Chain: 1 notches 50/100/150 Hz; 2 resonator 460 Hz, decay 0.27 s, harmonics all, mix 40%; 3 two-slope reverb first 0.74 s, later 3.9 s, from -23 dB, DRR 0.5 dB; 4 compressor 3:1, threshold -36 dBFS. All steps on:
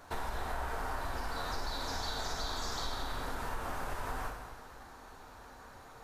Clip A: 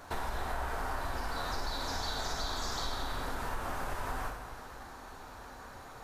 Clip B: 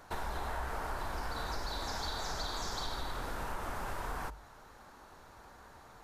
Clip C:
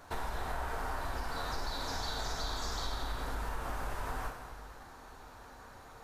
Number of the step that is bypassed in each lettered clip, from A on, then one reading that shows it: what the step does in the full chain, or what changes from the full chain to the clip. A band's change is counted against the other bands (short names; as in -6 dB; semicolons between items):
2, momentary loudness spread change -3 LU; 3, momentary loudness spread change +2 LU; 1, 125 Hz band +2.0 dB